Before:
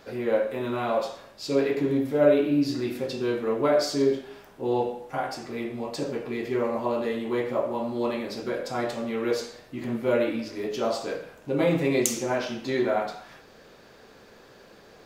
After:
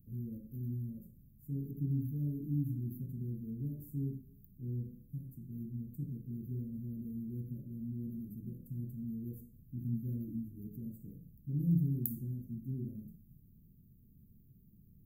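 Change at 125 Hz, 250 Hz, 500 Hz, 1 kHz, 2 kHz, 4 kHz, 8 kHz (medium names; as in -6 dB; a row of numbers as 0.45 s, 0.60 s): +1.5 dB, -11.5 dB, -33.0 dB, under -40 dB, under -40 dB, under -40 dB, under -25 dB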